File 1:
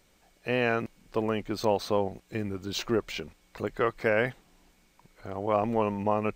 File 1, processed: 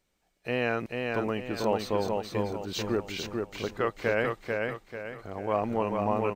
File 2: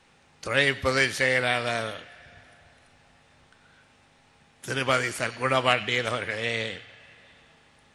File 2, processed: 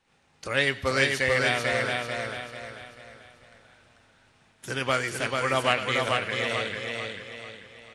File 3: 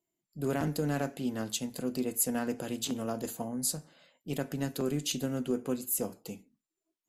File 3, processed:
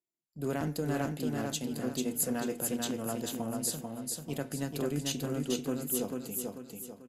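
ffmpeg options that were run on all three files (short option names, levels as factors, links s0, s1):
-af "agate=range=0.316:threshold=0.00112:ratio=16:detection=peak,aecho=1:1:441|882|1323|1764|2205:0.668|0.267|0.107|0.0428|0.0171,volume=0.794"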